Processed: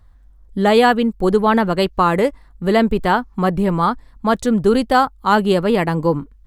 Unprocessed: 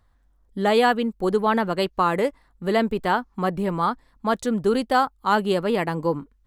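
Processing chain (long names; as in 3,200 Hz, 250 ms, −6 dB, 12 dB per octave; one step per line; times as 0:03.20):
low-shelf EQ 120 Hz +11 dB
level +5 dB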